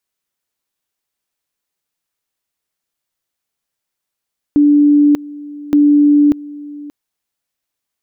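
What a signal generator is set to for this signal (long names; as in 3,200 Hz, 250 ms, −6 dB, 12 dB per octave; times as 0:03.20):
tone at two levels in turn 292 Hz −6 dBFS, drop 20.5 dB, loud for 0.59 s, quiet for 0.58 s, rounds 2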